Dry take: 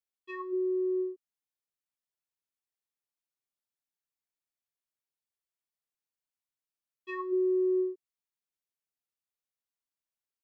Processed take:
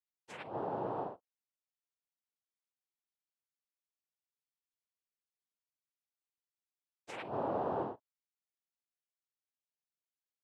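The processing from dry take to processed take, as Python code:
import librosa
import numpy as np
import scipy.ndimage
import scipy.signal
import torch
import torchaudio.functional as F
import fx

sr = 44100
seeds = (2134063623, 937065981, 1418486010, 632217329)

y = fx.room_early_taps(x, sr, ms=(12, 35), db=(-15.0, -16.5))
y = fx.noise_vocoder(y, sr, seeds[0], bands=4)
y = y * librosa.db_to_amplitude(-8.0)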